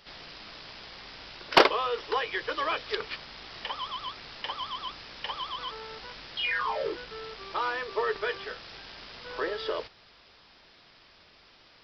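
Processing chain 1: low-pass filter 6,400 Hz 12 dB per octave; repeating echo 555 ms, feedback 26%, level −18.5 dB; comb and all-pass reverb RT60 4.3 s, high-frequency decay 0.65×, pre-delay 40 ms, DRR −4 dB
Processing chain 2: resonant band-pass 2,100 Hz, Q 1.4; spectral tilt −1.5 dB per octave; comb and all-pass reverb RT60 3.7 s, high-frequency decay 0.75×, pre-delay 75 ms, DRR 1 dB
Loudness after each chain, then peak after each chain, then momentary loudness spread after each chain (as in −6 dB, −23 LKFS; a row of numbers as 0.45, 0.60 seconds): −26.0, −35.0 LKFS; −6.5, −11.0 dBFS; 19, 17 LU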